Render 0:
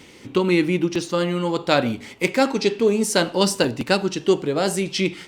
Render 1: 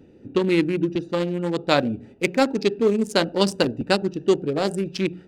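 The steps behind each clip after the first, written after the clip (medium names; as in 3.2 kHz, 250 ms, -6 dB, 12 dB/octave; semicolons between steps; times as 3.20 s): local Wiener filter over 41 samples; hum notches 60/120/180 Hz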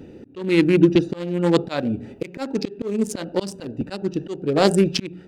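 slow attack 451 ms; trim +9 dB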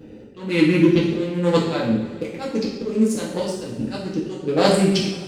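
reverberation, pre-delay 3 ms, DRR -5 dB; trim -4.5 dB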